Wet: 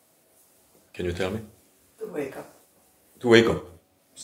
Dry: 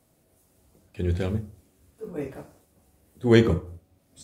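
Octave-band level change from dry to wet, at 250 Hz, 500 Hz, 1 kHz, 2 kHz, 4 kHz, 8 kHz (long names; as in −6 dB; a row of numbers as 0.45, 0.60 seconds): −0.5, +2.0, +5.5, +6.5, +7.0, +7.0 decibels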